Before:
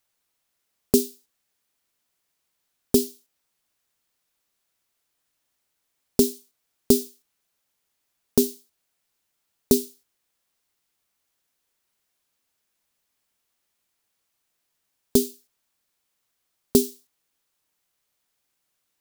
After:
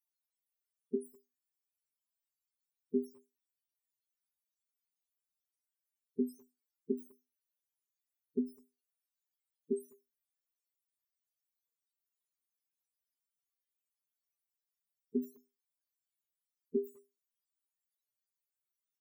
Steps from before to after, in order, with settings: loudest bins only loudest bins 8; chorus 0.34 Hz, delay 15.5 ms, depth 3.7 ms; pre-emphasis filter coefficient 0.8; speakerphone echo 200 ms, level -27 dB; trim +3.5 dB

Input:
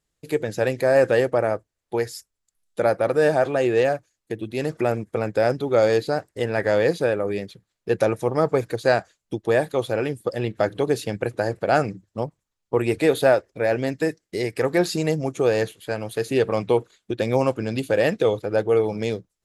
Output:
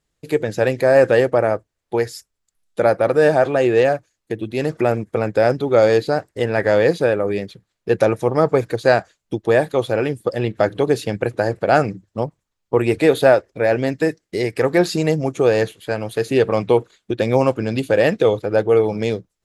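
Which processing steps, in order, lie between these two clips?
treble shelf 6.5 kHz -5.5 dB; trim +4.5 dB

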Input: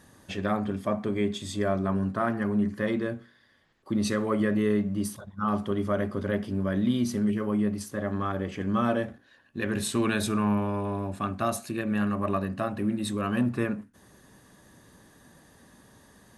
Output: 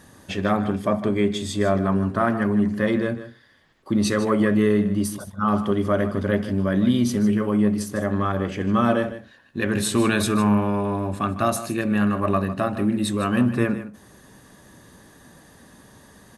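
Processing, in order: delay 153 ms -13 dB; trim +6 dB

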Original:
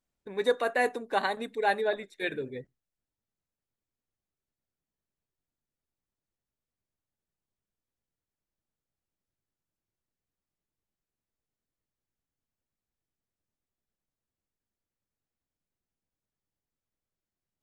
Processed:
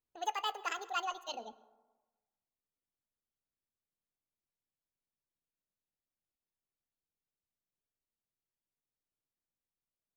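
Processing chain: speed mistake 45 rpm record played at 78 rpm; plate-style reverb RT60 1.2 s, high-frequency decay 0.4×, pre-delay 90 ms, DRR 18 dB; trim -9 dB

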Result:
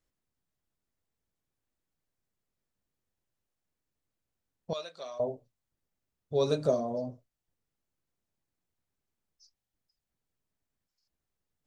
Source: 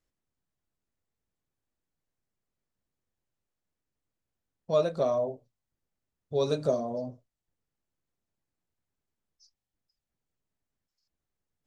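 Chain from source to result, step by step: 4.73–5.20 s: band-pass filter 3.8 kHz, Q 0.97

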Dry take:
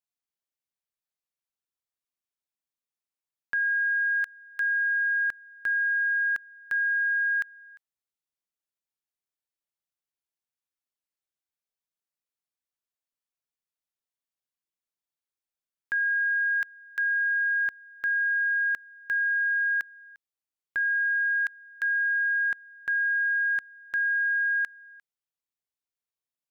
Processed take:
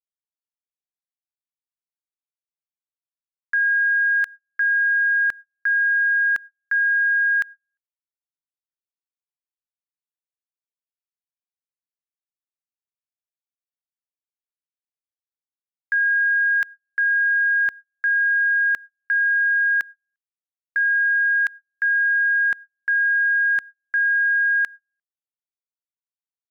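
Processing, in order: gate -39 dBFS, range -40 dB; trim +6.5 dB

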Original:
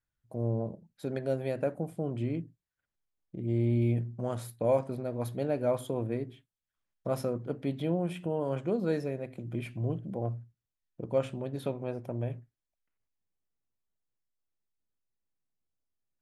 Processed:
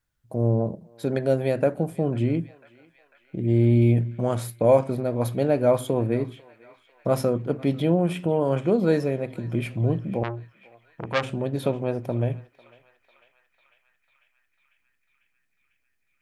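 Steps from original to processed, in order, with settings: on a send: band-passed feedback delay 497 ms, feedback 81%, band-pass 2.1 kHz, level -17.5 dB; 10.23–11.31 s: on the sum: transformer saturation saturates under 2 kHz; trim +9 dB

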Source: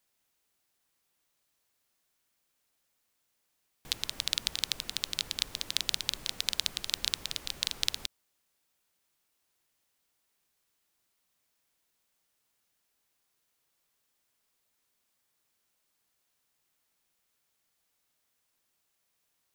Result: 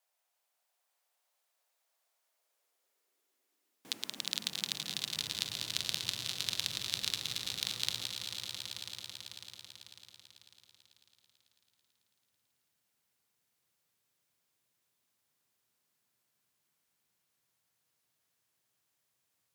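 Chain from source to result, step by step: wow and flutter 20 cents; echo with a slow build-up 110 ms, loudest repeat 5, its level -11 dB; high-pass sweep 670 Hz -> 110 Hz, 2.15–5.38 s; trim -5 dB

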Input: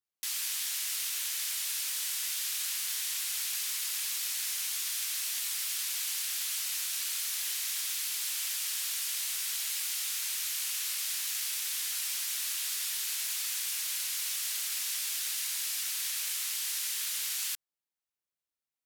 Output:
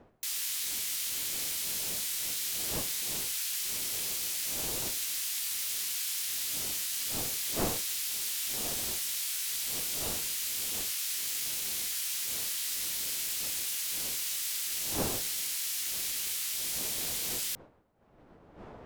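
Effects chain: wind noise 550 Hz -47 dBFS; formant shift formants +2 st

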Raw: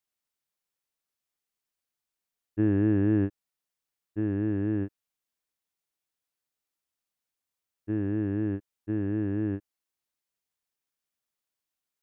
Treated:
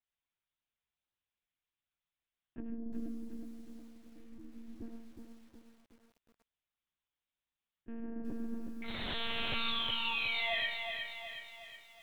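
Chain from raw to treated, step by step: treble shelf 2.3 kHz +9 dB; low-pass that closes with the level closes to 330 Hz, closed at -21 dBFS; peak limiter -25.5 dBFS, peak gain reduction 10.5 dB; 3.05–4.81 s: vowel filter i; saturation -20 dBFS, distortion -30 dB; 8.83–10.60 s: painted sound fall 610–2200 Hz -28 dBFS; integer overflow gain 25.5 dB; algorithmic reverb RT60 0.44 s, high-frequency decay 0.5×, pre-delay 50 ms, DRR 0.5 dB; monotone LPC vocoder at 8 kHz 230 Hz; bit-crushed delay 366 ms, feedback 55%, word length 9-bit, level -5.5 dB; trim -8 dB

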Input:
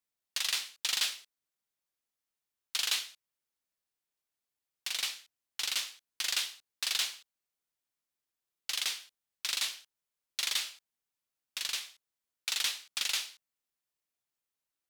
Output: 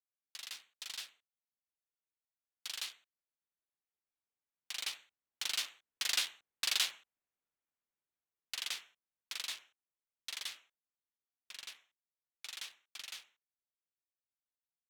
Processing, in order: local Wiener filter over 9 samples; Doppler pass-by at 6.55 s, 12 m/s, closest 16 m

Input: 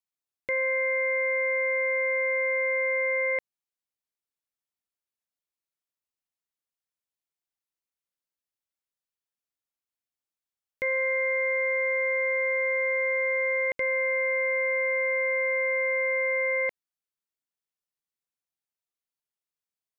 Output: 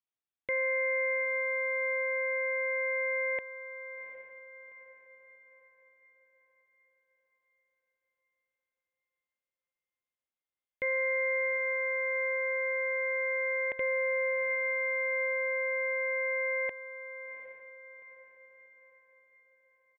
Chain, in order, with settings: echo that smears into a reverb 765 ms, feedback 43%, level -11 dB; resampled via 8 kHz; trim -3.5 dB

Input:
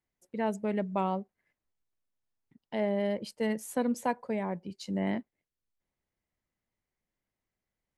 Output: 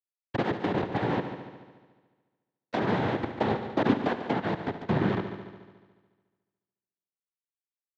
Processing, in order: low-pass that closes with the level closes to 340 Hz, closed at -28 dBFS; peaking EQ 260 Hz +4.5 dB 0.28 oct; compression 5:1, threshold -36 dBFS, peak gain reduction 11 dB; power-law waveshaper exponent 3; fuzz box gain 61 dB, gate -57 dBFS; noise-vocoded speech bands 6; distance through air 280 m; multi-head delay 72 ms, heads first and second, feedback 59%, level -13 dB; trim -4.5 dB

